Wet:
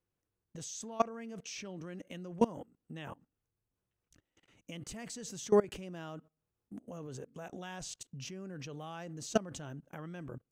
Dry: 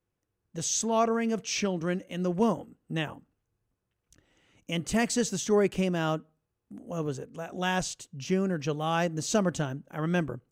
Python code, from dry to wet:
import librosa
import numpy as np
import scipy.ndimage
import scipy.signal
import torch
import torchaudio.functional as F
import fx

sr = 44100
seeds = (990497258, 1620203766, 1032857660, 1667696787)

y = fx.level_steps(x, sr, step_db=22)